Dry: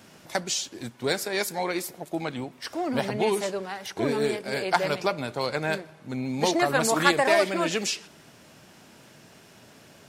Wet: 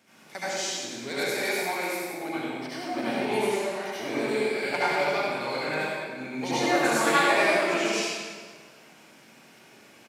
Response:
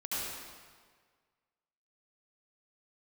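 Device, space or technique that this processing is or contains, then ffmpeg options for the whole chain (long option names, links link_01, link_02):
PA in a hall: -filter_complex "[0:a]highpass=170,equalizer=frequency=2200:width_type=o:width=0.34:gain=7,aecho=1:1:99:0.473[link_01];[1:a]atrim=start_sample=2205[link_02];[link_01][link_02]afir=irnorm=-1:irlink=0,volume=-6.5dB"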